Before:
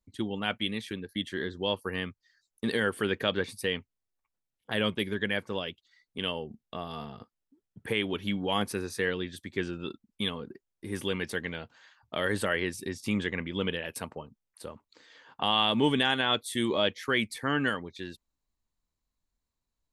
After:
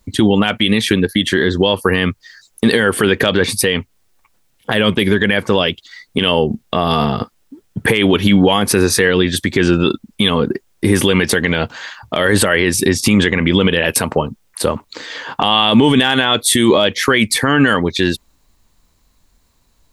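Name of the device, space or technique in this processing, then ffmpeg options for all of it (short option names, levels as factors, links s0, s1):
loud club master: -af "acompressor=threshold=0.0141:ratio=1.5,asoftclip=type=hard:threshold=0.112,alimiter=level_in=25.1:limit=0.891:release=50:level=0:latency=1,volume=0.891"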